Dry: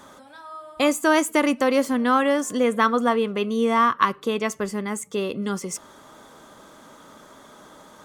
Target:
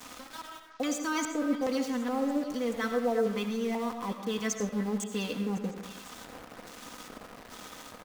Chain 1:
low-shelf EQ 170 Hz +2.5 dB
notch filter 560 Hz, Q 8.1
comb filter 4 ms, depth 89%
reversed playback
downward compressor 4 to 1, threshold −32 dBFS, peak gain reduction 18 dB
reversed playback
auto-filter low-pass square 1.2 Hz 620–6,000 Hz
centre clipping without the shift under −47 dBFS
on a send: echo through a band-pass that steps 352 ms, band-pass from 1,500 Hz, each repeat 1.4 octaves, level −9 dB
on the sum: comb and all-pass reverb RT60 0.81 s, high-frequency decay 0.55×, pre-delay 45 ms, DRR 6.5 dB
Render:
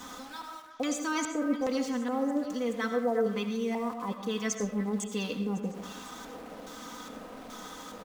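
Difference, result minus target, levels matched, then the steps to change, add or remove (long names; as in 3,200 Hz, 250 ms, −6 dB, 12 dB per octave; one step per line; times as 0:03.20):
centre clipping without the shift: distortion −8 dB
change: centre clipping without the shift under −40.5 dBFS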